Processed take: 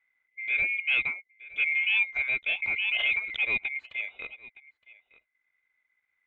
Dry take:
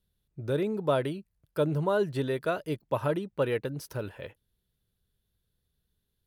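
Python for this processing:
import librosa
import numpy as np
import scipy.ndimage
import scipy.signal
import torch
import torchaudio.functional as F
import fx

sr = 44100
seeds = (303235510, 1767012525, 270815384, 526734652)

y = fx.band_swap(x, sr, width_hz=2000)
y = y + 10.0 ** (-21.0 / 20.0) * np.pad(y, (int(916 * sr / 1000.0), 0))[:len(y)]
y = 10.0 ** (-18.5 / 20.0) * np.tanh(y / 10.0 ** (-18.5 / 20.0))
y = fx.transient(y, sr, attack_db=-4, sustain_db=-8)
y = scipy.signal.sosfilt(scipy.signal.butter(4, 3200.0, 'lowpass', fs=sr, output='sos'), y)
y = fx.pre_swell(y, sr, db_per_s=20.0, at=(2.62, 3.4))
y = y * 10.0 ** (3.5 / 20.0)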